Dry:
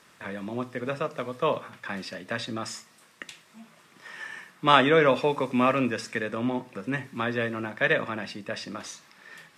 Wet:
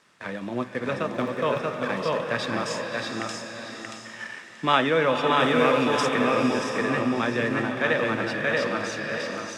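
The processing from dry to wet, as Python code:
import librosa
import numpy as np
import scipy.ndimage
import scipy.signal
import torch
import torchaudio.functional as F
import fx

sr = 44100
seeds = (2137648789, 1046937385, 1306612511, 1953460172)

p1 = fx.law_mismatch(x, sr, coded='A')
p2 = scipy.signal.sosfilt(scipy.signal.butter(2, 8400.0, 'lowpass', fs=sr, output='sos'), p1)
p3 = p2 + fx.echo_feedback(p2, sr, ms=631, feedback_pct=18, wet_db=-3.5, dry=0)
p4 = fx.dmg_crackle(p3, sr, seeds[0], per_s=31.0, level_db=-41.0, at=(1.12, 1.62), fade=0.02)
p5 = fx.high_shelf(p4, sr, hz=4700.0, db=8.5, at=(5.4, 6.09))
p6 = fx.over_compress(p5, sr, threshold_db=-30.0, ratio=-1.0)
p7 = p5 + (p6 * 10.0 ** (-2.0 / 20.0))
p8 = fx.low_shelf(p7, sr, hz=68.0, db=-6.5)
p9 = fx.rev_bloom(p8, sr, seeds[1], attack_ms=680, drr_db=3.5)
y = p9 * 10.0 ** (-2.5 / 20.0)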